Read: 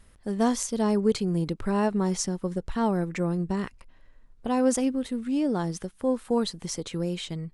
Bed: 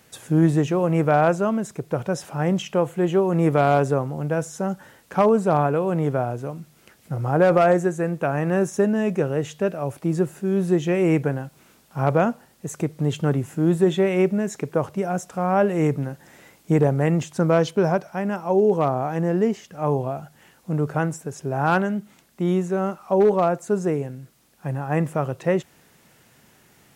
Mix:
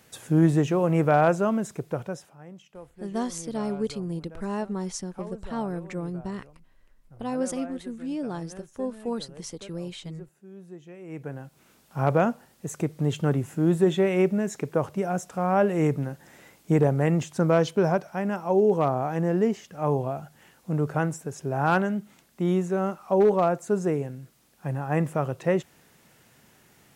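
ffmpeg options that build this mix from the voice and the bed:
-filter_complex "[0:a]adelay=2750,volume=0.531[s0];[1:a]volume=8.91,afade=t=out:st=1.75:d=0.61:silence=0.0841395,afade=t=in:st=11.07:d=0.84:silence=0.0891251[s1];[s0][s1]amix=inputs=2:normalize=0"

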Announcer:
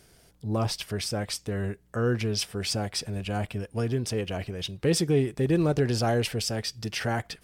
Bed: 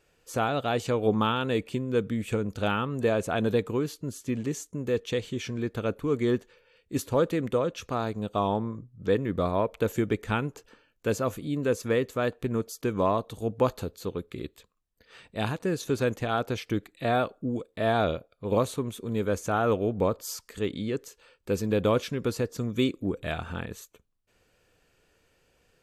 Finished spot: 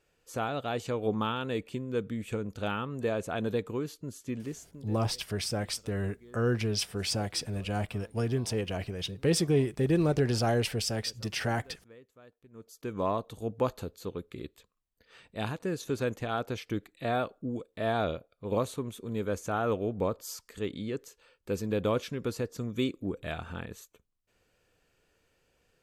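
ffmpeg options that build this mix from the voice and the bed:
-filter_complex "[0:a]adelay=4400,volume=0.794[s0];[1:a]volume=7.94,afade=t=out:st=4.34:d=0.65:silence=0.0749894,afade=t=in:st=12.52:d=0.58:silence=0.0668344[s1];[s0][s1]amix=inputs=2:normalize=0"

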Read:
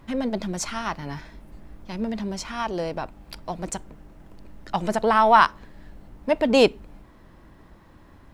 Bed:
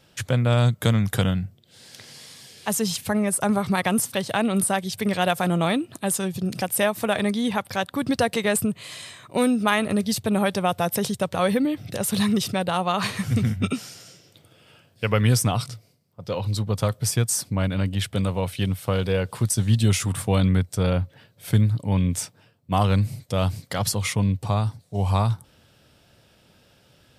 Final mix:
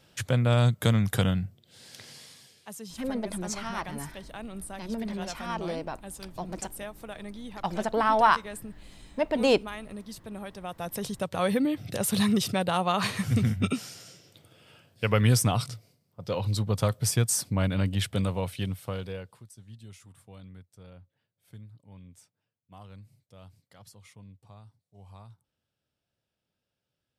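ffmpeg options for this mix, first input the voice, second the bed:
-filter_complex "[0:a]adelay=2900,volume=0.531[s0];[1:a]volume=4.22,afade=t=out:st=2.08:d=0.59:silence=0.177828,afade=t=in:st=10.58:d=1.19:silence=0.16788,afade=t=out:st=18.04:d=1.4:silence=0.0530884[s1];[s0][s1]amix=inputs=2:normalize=0"

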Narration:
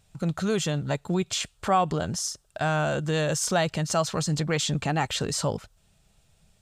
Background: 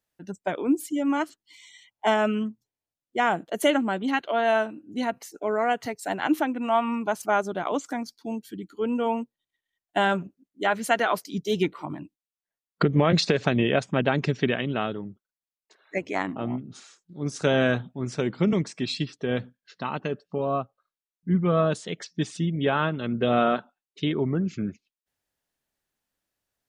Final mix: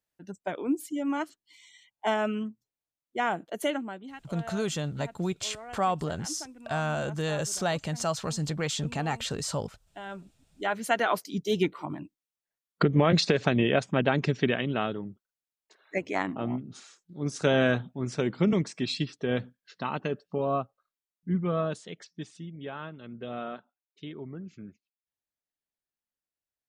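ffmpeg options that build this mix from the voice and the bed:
-filter_complex "[0:a]adelay=4100,volume=0.596[s0];[1:a]volume=4.47,afade=t=out:st=3.47:d=0.66:silence=0.188365,afade=t=in:st=10.03:d=1.12:silence=0.125893,afade=t=out:st=20.53:d=1.9:silence=0.211349[s1];[s0][s1]amix=inputs=2:normalize=0"

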